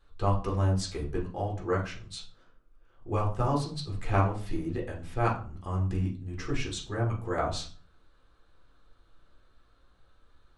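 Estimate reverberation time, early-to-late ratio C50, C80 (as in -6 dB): 0.40 s, 9.5 dB, 14.5 dB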